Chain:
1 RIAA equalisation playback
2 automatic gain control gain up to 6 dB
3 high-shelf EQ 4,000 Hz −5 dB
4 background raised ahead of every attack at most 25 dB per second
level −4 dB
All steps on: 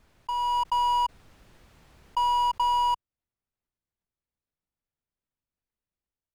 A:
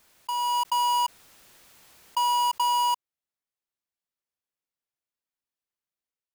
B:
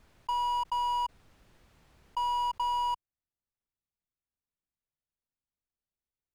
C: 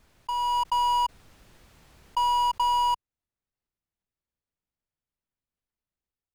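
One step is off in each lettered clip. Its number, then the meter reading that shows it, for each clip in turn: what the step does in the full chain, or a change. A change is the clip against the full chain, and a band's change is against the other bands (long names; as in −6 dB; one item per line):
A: 1, change in crest factor −4.0 dB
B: 2, change in momentary loudness spread −2 LU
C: 3, 8 kHz band +3.5 dB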